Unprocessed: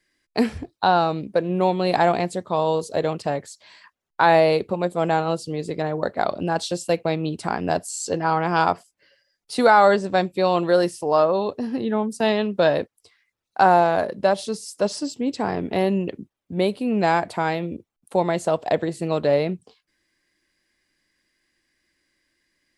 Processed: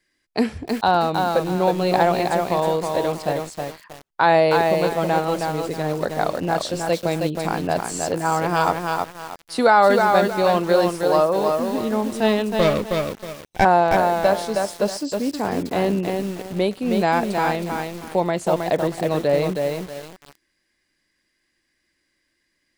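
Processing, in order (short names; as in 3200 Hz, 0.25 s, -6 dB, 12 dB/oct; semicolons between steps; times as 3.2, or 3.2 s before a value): 12.56–13.65 minimum comb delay 0.35 ms; lo-fi delay 0.317 s, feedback 35%, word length 6-bit, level -3.5 dB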